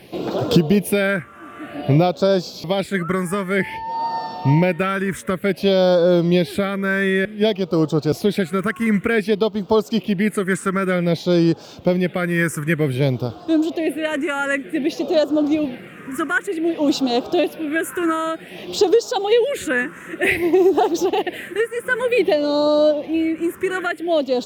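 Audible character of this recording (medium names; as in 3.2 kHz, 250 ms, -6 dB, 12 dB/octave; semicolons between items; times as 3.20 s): phasing stages 4, 0.54 Hz, lowest notch 700–2000 Hz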